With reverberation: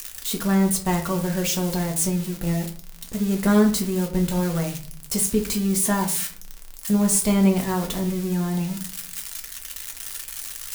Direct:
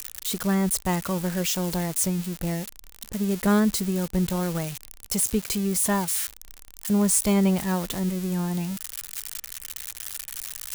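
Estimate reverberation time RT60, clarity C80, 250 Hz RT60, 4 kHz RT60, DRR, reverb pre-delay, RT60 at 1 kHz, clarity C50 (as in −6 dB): 0.45 s, 15.5 dB, 0.60 s, 0.30 s, 2.0 dB, 4 ms, 0.45 s, 11.0 dB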